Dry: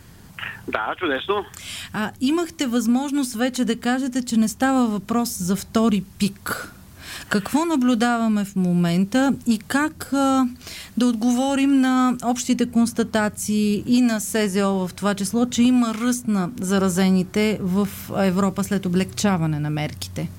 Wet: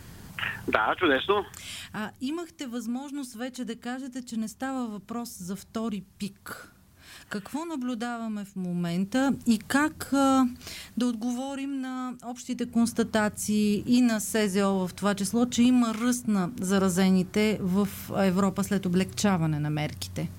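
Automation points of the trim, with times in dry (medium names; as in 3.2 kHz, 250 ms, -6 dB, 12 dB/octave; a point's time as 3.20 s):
1.10 s 0 dB
2.46 s -13 dB
8.54 s -13 dB
9.51 s -3.5 dB
10.66 s -3.5 dB
11.72 s -15.5 dB
12.38 s -15.5 dB
12.86 s -4.5 dB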